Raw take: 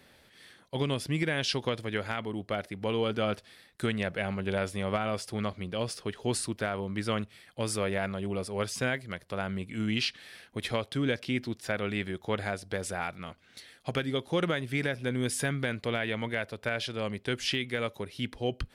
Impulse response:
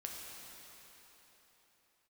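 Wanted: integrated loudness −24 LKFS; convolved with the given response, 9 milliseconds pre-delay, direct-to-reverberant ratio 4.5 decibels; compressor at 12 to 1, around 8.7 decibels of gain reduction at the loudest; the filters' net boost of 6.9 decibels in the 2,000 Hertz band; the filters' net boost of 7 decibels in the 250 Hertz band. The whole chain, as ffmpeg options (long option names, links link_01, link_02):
-filter_complex "[0:a]equalizer=frequency=250:width_type=o:gain=8.5,equalizer=frequency=2000:width_type=o:gain=8.5,acompressor=threshold=-28dB:ratio=12,asplit=2[link_01][link_02];[1:a]atrim=start_sample=2205,adelay=9[link_03];[link_02][link_03]afir=irnorm=-1:irlink=0,volume=-3.5dB[link_04];[link_01][link_04]amix=inputs=2:normalize=0,volume=8.5dB"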